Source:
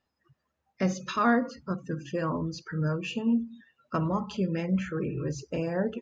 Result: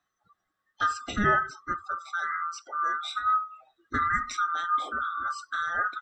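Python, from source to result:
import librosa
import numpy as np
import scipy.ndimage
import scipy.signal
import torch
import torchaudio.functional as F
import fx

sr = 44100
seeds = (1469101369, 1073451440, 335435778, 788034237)

y = fx.band_swap(x, sr, width_hz=1000)
y = fx.highpass(y, sr, hz=fx.line((1.98, 1100.0), (3.1, 480.0)), slope=12, at=(1.98, 3.1), fade=0.02)
y = fx.high_shelf(y, sr, hz=fx.line((3.97, 2800.0), (4.39, 4000.0)), db=11.0, at=(3.97, 4.39), fade=0.02)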